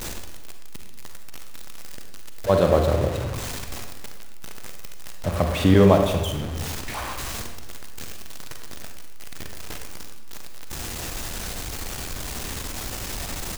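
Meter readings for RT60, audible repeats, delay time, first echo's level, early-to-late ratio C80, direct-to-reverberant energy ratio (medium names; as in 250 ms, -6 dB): 1.2 s, 1, 275 ms, -19.5 dB, 7.0 dB, 4.0 dB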